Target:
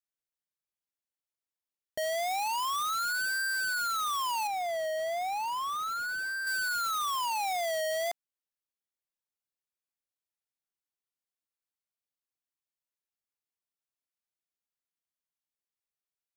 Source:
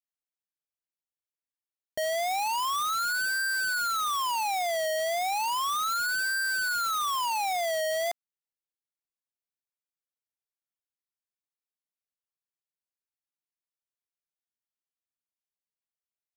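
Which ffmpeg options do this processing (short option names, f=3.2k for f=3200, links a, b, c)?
-filter_complex "[0:a]asettb=1/sr,asplit=3[a][b][c];[a]atrim=end=4.474[d];[b]atrim=start=4.47:end=6.47,asetpts=PTS-STARTPTS,afade=t=in:d=0.004:c=qsin,afade=t=out:st=1.996:d=0.004:c=qsin,highshelf=f=2.4k:g=-9[e];[c]atrim=start=6.466[f];[d][e]acrossfade=d=0.004:c1=hsin:c2=qsin[g];[g][f]acrossfade=d=0.004:c1=qsin:c2=hsin,volume=-2.5dB"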